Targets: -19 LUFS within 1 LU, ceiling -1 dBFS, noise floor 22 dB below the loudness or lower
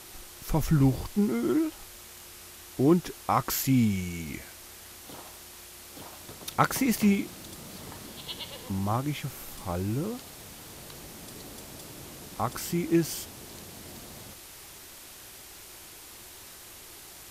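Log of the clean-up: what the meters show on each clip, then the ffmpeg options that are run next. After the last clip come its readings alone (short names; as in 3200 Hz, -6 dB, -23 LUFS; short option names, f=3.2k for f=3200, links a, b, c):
noise floor -48 dBFS; noise floor target -51 dBFS; loudness -28.5 LUFS; peak -7.5 dBFS; loudness target -19.0 LUFS
-> -af "afftdn=nr=6:nf=-48"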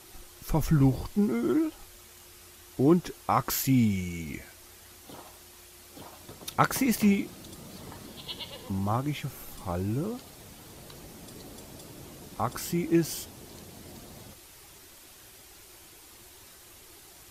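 noise floor -52 dBFS; loudness -28.5 LUFS; peak -7.5 dBFS; loudness target -19.0 LUFS
-> -af "volume=9.5dB,alimiter=limit=-1dB:level=0:latency=1"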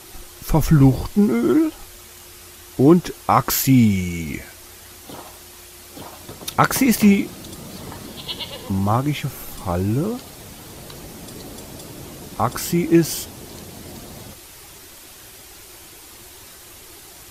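loudness -19.0 LUFS; peak -1.0 dBFS; noise floor -43 dBFS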